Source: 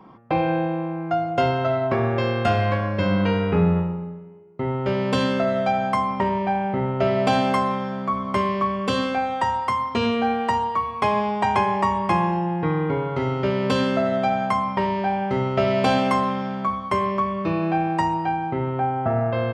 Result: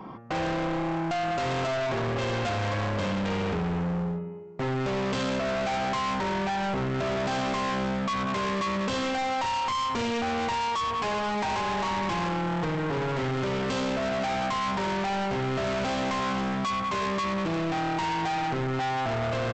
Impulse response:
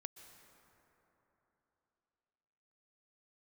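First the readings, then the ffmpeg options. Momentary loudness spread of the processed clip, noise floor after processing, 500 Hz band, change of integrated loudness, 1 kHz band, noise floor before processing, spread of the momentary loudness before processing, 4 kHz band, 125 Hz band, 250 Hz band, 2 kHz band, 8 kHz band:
1 LU, -29 dBFS, -6.5 dB, -5.5 dB, -6.0 dB, -32 dBFS, 5 LU, -1.0 dB, -6.0 dB, -6.0 dB, -2.0 dB, no reading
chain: -af "alimiter=limit=0.133:level=0:latency=1:release=104,aresample=16000,volume=44.7,asoftclip=hard,volume=0.0224,aresample=44100,volume=2"

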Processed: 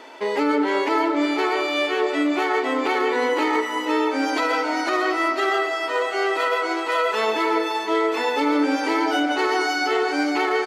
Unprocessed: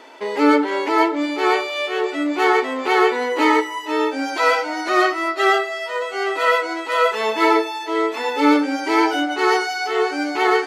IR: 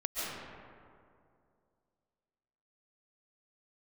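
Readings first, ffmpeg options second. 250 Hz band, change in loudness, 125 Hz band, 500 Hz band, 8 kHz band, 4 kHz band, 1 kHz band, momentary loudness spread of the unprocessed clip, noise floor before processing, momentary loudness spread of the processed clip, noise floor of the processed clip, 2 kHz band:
-2.0 dB, -2.5 dB, no reading, -2.5 dB, -2.0 dB, -1.5 dB, -3.0 dB, 6 LU, -30 dBFS, 2 LU, -27 dBFS, -2.5 dB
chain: -filter_complex "[0:a]alimiter=limit=0.2:level=0:latency=1:release=72,aecho=1:1:567|1134|1701|2268|2835:0.188|0.0979|0.0509|0.0265|0.0138,asplit=2[s0][s1];[1:a]atrim=start_sample=2205,lowpass=7800[s2];[s1][s2]afir=irnorm=-1:irlink=0,volume=0.158[s3];[s0][s3]amix=inputs=2:normalize=0"

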